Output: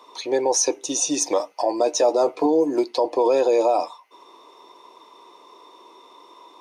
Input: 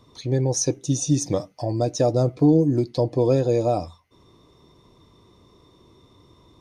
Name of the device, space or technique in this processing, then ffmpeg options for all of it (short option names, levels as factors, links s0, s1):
laptop speaker: -filter_complex "[0:a]highpass=f=370:w=0.5412,highpass=f=370:w=1.3066,equalizer=f=940:t=o:w=0.56:g=11,equalizer=f=2600:t=o:w=0.37:g=6,alimiter=limit=0.15:level=0:latency=1:release=29,asettb=1/sr,asplit=3[s0][s1][s2];[s0]atrim=end=1.784[s3];[s1]atrim=start=1.78:end=2.46,asetpts=PTS-STARTPTS,afade=t=in:d=0.004:c=qsin,afade=t=out:st=0.676:d=0.004:c=qsin,asplit=2[s4][s5];[s5]adelay=13,volume=0.376[s6];[s4][s6]amix=inputs=2:normalize=0,atrim=end_sample=29988[s7];[s2]atrim=start=2.456[s8];[s3][s7]acrossfade=d=0.004:c1=hsin:c2=qsin[s9];[s9][s8]acrossfade=d=0.004:c1=qsin:c2=hsin,volume=2"